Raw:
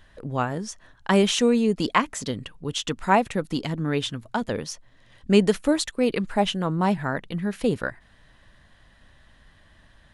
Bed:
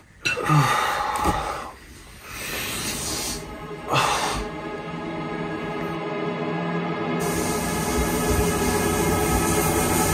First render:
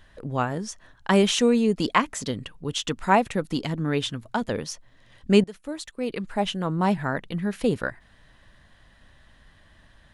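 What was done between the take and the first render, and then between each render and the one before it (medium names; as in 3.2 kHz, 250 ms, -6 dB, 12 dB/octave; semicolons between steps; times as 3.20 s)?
5.44–6.90 s: fade in linear, from -22.5 dB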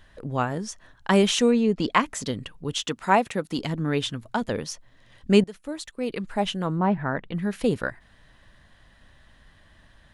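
1.51–1.94 s: distance through air 92 m; 2.83–3.59 s: high-pass 180 Hz 6 dB/octave; 6.78–7.34 s: low-pass 1.5 kHz -> 3.2 kHz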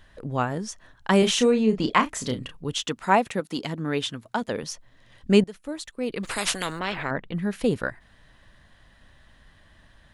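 1.19–2.57 s: doubling 32 ms -7.5 dB; 3.40–4.63 s: high-pass 200 Hz 6 dB/octave; 6.23–7.11 s: spectrum-flattening compressor 4:1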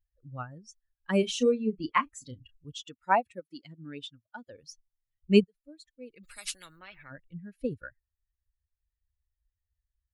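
expander on every frequency bin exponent 2; upward expansion 1.5:1, over -30 dBFS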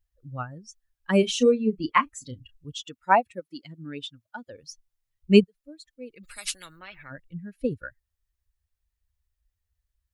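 trim +5 dB; peak limiter -3 dBFS, peak gain reduction 1 dB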